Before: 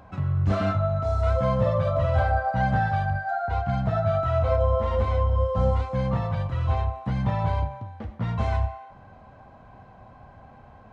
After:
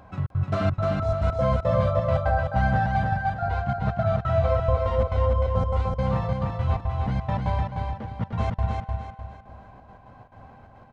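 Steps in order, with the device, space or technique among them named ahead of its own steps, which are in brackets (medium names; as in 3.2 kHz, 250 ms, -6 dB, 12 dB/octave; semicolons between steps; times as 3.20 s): trance gate with a delay (trance gate "xxx.x.xx.x" 173 bpm -60 dB; feedback delay 302 ms, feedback 36%, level -3.5 dB)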